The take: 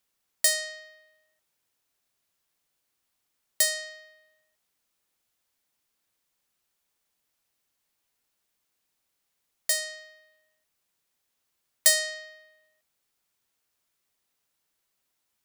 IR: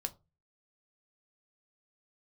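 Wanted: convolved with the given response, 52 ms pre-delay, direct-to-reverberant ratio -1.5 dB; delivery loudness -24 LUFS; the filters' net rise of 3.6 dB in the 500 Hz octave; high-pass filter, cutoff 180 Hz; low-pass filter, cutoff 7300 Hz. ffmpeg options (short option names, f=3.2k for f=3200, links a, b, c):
-filter_complex "[0:a]highpass=180,lowpass=7.3k,equalizer=f=500:t=o:g=5,asplit=2[a][b];[1:a]atrim=start_sample=2205,adelay=52[c];[b][c]afir=irnorm=-1:irlink=0,volume=2dB[d];[a][d]amix=inputs=2:normalize=0"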